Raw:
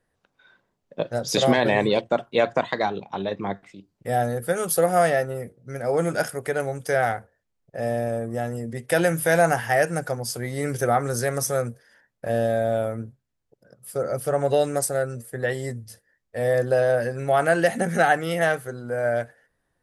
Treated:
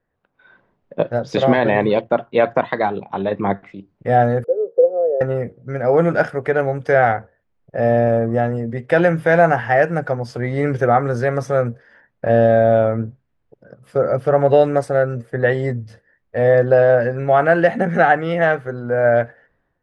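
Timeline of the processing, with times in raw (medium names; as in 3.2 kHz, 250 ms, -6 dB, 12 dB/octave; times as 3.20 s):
4.44–5.21 s: Butterworth band-pass 460 Hz, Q 3.8
whole clip: low-pass 2.2 kHz 12 dB/octave; level rider gain up to 12.5 dB; trim -1 dB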